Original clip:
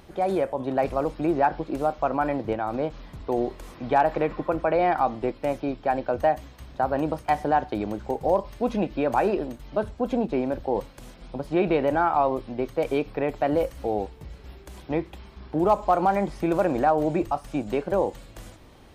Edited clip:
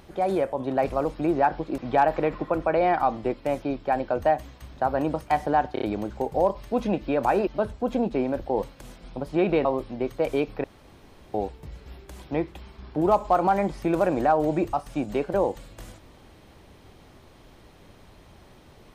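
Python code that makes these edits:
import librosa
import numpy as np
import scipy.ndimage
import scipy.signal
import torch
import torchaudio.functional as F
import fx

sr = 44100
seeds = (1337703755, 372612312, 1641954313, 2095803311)

y = fx.edit(x, sr, fx.cut(start_s=1.78, length_s=1.98),
    fx.stutter(start_s=7.71, slice_s=0.03, count=4),
    fx.cut(start_s=9.36, length_s=0.29),
    fx.cut(start_s=11.83, length_s=0.4),
    fx.room_tone_fill(start_s=13.22, length_s=0.7), tone=tone)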